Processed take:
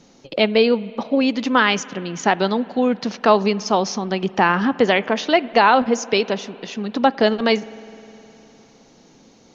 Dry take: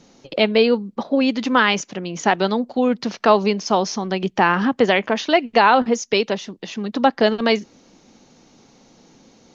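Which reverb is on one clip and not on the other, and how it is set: spring tank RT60 3.4 s, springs 51 ms, chirp 55 ms, DRR 19 dB

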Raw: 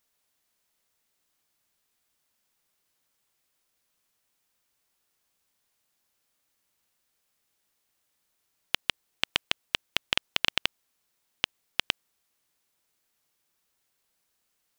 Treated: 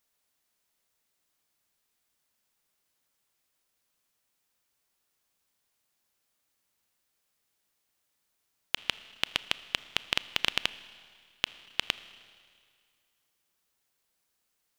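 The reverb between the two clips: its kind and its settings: Schroeder reverb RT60 2.1 s, combs from 26 ms, DRR 16 dB; trim -2 dB

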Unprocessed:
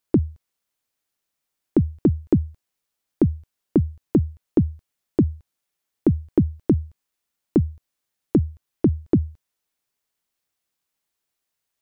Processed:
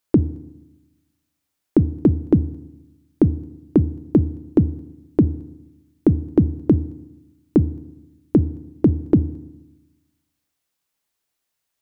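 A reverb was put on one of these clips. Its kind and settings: FDN reverb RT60 1 s, low-frequency decay 1.25×, high-frequency decay 0.8×, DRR 16.5 dB; trim +2.5 dB

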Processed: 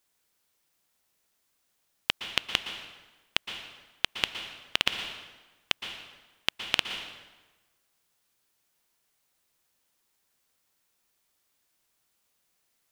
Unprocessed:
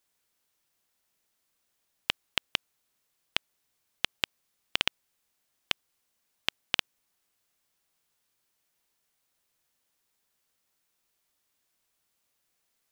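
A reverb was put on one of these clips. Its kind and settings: plate-style reverb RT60 1.2 s, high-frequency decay 0.8×, pre-delay 105 ms, DRR 7 dB; trim +2 dB

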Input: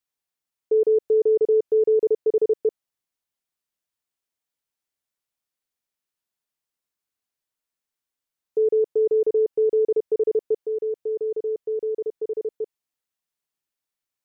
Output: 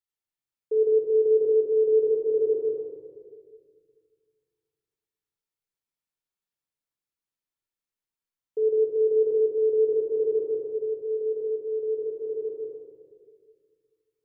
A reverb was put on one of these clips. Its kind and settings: simulated room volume 2500 m³, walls mixed, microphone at 4.3 m; trim -12 dB

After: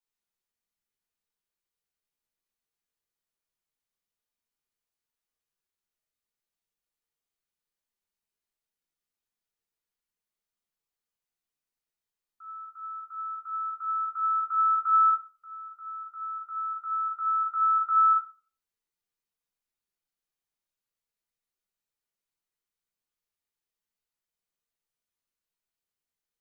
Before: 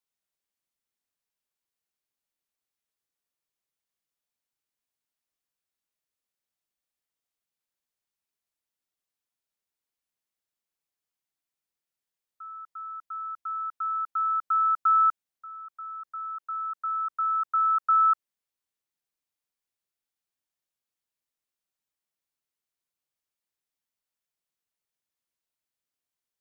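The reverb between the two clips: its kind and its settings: simulated room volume 32 m³, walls mixed, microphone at 0.8 m; trim -6.5 dB

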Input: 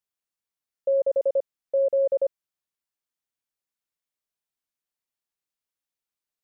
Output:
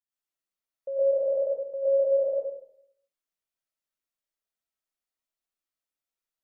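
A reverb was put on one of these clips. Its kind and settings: algorithmic reverb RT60 0.69 s, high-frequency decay 0.5×, pre-delay 75 ms, DRR -9 dB; trim -11 dB

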